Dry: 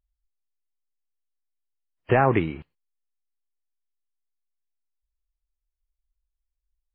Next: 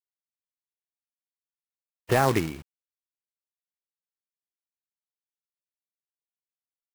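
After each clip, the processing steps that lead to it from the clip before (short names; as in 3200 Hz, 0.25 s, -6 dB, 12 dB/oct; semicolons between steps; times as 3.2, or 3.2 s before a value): companded quantiser 4-bit; gain -3 dB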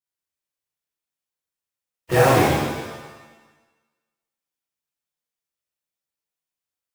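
shimmer reverb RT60 1.2 s, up +7 st, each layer -8 dB, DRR -9 dB; gain -3 dB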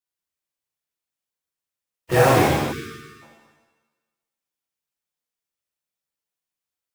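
spectral delete 2.72–3.22, 460–1100 Hz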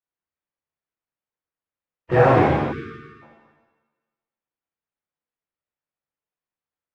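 LPF 1900 Hz 12 dB/oct; gain +1 dB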